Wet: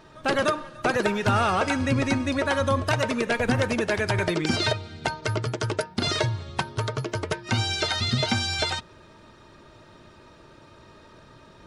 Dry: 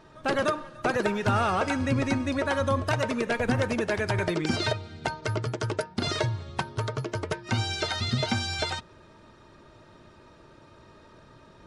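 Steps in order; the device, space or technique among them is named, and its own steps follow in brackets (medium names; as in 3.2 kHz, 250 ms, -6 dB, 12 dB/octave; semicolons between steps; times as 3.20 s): presence and air boost (peaking EQ 3.3 kHz +2.5 dB 1.8 oct; treble shelf 9.8 kHz +5 dB); trim +2 dB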